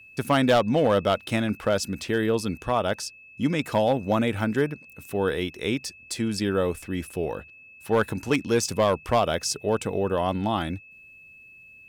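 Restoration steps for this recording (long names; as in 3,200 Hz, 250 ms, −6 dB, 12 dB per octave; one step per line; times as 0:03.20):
clipped peaks rebuilt −13.5 dBFS
notch filter 2,600 Hz, Q 30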